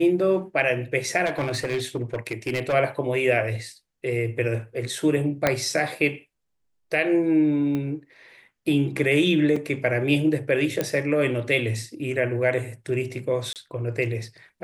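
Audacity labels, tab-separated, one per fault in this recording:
1.250000	2.740000	clipped -21 dBFS
5.470000	5.470000	pop -5 dBFS
7.750000	7.750000	pop -17 dBFS
9.560000	9.560000	dropout 4.2 ms
10.810000	10.810000	pop -10 dBFS
13.530000	13.560000	dropout 28 ms

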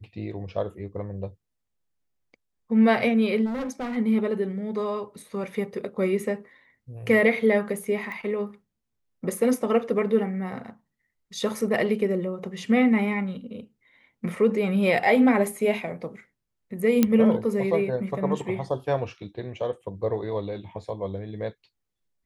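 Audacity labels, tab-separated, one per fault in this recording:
3.450000	3.970000	clipped -27 dBFS
8.120000	8.120000	pop -24 dBFS
17.030000	17.030000	pop -6 dBFS

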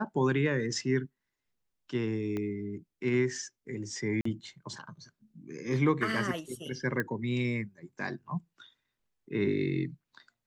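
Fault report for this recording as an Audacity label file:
2.370000	2.370000	pop -23 dBFS
4.210000	4.250000	dropout 44 ms
7.000000	7.000000	pop -18 dBFS

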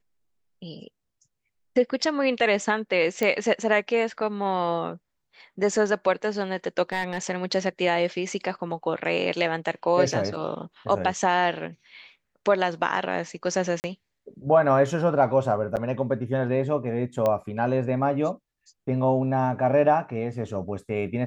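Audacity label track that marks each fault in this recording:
3.230000	3.230000	pop -11 dBFS
6.920000	7.180000	clipped -20 dBFS
13.800000	13.840000	dropout 39 ms
15.760000	15.770000	dropout 8.4 ms
17.260000	17.260000	pop -13 dBFS

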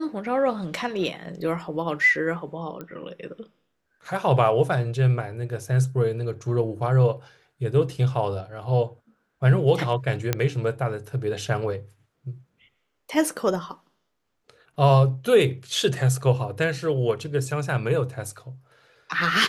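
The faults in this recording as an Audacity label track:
2.810000	2.810000	pop -22 dBFS
10.330000	10.330000	pop -7 dBFS

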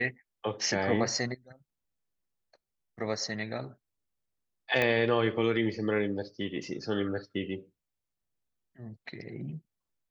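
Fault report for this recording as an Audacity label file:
4.820000	4.820000	pop -14 dBFS

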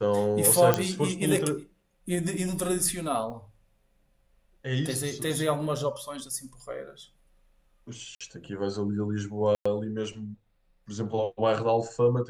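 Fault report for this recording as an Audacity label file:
0.740000	0.740000	pop -7 dBFS
3.300000	3.300000	dropout 2.3 ms
8.150000	8.210000	dropout 56 ms
9.550000	9.650000	dropout 105 ms

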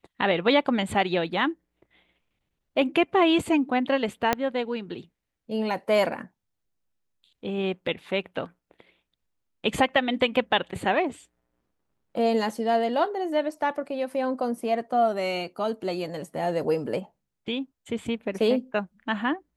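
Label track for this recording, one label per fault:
4.330000	4.330000	pop -7 dBFS

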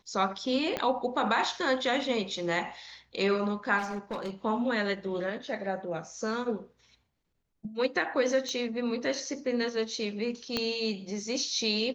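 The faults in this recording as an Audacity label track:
0.770000	0.770000	pop -16 dBFS
3.780000	4.300000	clipped -30 dBFS
8.490000	8.490000	pop -23 dBFS
10.570000	10.570000	pop -14 dBFS

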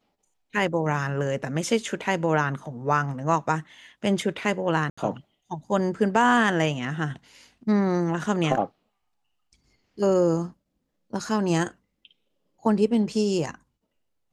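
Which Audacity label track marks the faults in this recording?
4.900000	4.970000	dropout 75 ms

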